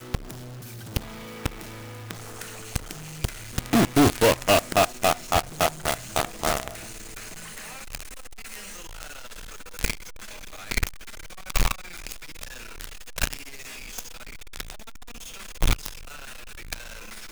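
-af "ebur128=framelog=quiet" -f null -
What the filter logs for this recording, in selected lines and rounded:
Integrated loudness:
  I:         -27.3 LUFS
  Threshold: -38.8 LUFS
Loudness range:
  LRA:        13.8 LU
  Threshold: -48.3 LUFS
  LRA low:   -36.4 LUFS
  LRA high:  -22.6 LUFS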